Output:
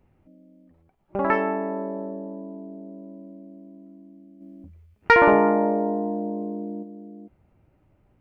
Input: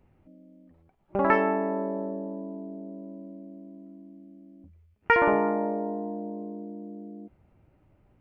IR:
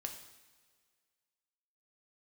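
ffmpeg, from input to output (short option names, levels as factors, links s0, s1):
-filter_complex "[0:a]asplit=3[s0][s1][s2];[s0]afade=t=out:st=4.4:d=0.02[s3];[s1]acontrast=71,afade=t=in:st=4.4:d=0.02,afade=t=out:st=6.82:d=0.02[s4];[s2]afade=t=in:st=6.82:d=0.02[s5];[s3][s4][s5]amix=inputs=3:normalize=0"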